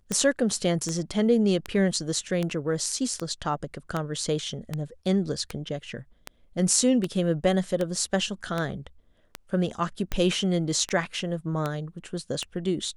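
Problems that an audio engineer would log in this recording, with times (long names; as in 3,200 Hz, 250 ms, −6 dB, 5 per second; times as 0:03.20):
scratch tick 78 rpm −14 dBFS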